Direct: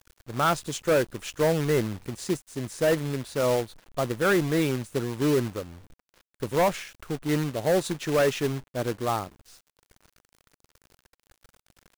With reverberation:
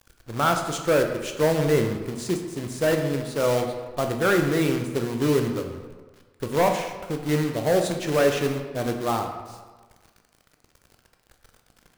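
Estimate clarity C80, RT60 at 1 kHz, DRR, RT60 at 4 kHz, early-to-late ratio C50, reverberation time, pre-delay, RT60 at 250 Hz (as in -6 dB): 8.0 dB, 1.4 s, 4.0 dB, 0.80 s, 6.5 dB, 1.4 s, 15 ms, 1.3 s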